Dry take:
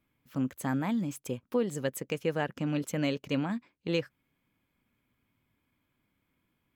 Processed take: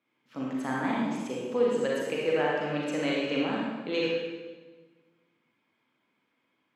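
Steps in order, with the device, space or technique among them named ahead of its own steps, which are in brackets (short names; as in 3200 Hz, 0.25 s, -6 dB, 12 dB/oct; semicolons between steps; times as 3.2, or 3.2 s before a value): supermarket ceiling speaker (BPF 320–5000 Hz; reverb RT60 1.4 s, pre-delay 34 ms, DRR -4.5 dB)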